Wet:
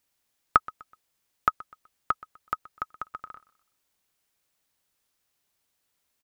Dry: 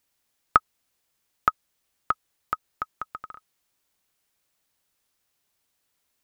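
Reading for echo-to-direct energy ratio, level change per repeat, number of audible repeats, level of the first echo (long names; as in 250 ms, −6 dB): −20.0 dB, −9.0 dB, 2, −20.5 dB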